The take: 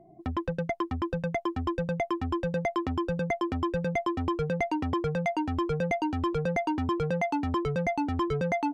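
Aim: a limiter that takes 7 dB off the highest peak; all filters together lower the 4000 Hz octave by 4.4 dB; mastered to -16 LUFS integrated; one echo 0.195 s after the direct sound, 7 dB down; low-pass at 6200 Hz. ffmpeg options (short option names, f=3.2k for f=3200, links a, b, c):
-af "lowpass=6.2k,equalizer=f=4k:t=o:g=-6,alimiter=limit=-24dB:level=0:latency=1,aecho=1:1:195:0.447,volume=15.5dB"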